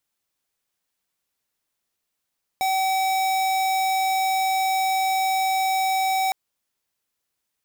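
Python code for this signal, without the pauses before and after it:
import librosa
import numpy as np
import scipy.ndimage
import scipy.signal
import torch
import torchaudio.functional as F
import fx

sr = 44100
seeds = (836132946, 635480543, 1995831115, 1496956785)

y = fx.tone(sr, length_s=3.71, wave='square', hz=763.0, level_db=-22.0)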